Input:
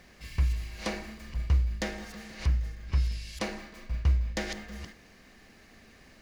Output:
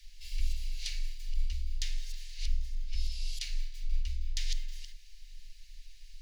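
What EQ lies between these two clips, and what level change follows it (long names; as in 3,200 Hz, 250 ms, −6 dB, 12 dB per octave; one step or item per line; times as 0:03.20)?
inverse Chebyshev band-stop filter 130–670 Hz, stop band 80 dB
spectral tilt −2.5 dB per octave
+8.0 dB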